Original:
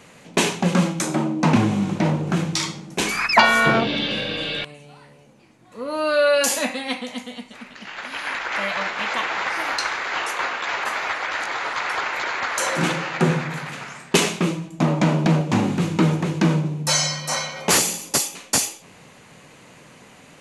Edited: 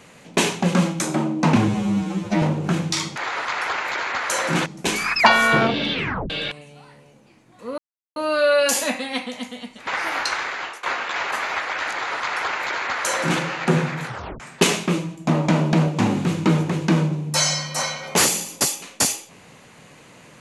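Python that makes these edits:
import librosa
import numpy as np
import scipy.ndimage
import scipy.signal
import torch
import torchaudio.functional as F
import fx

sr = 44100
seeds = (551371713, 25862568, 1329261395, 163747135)

y = fx.edit(x, sr, fx.stretch_span(start_s=1.68, length_s=0.37, factor=2.0),
    fx.tape_stop(start_s=4.06, length_s=0.37),
    fx.insert_silence(at_s=5.91, length_s=0.38),
    fx.cut(start_s=7.62, length_s=1.78),
    fx.fade_out_to(start_s=9.99, length_s=0.37, floor_db=-21.0),
    fx.duplicate(start_s=11.44, length_s=1.5, to_s=2.79),
    fx.tape_stop(start_s=13.59, length_s=0.34), tone=tone)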